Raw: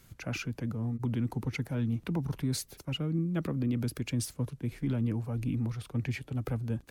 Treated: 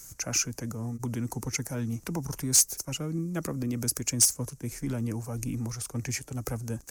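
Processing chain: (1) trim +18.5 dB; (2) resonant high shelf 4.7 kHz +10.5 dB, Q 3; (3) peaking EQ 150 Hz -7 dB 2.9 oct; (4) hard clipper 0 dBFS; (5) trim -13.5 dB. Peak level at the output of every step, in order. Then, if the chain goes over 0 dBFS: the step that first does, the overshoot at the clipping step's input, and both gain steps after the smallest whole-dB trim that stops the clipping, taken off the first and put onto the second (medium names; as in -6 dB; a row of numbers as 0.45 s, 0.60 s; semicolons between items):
-3.0 dBFS, +8.5 dBFS, +8.5 dBFS, 0.0 dBFS, -13.5 dBFS; step 2, 8.5 dB; step 1 +9.5 dB, step 5 -4.5 dB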